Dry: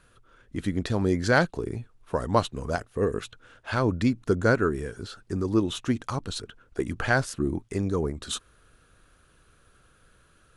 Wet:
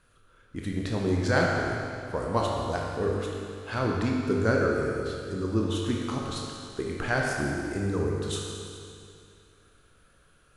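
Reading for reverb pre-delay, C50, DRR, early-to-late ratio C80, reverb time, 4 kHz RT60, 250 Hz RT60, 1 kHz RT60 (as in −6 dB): 20 ms, −0.5 dB, −2.0 dB, 1.5 dB, 2.5 s, 2.4 s, 2.5 s, 2.5 s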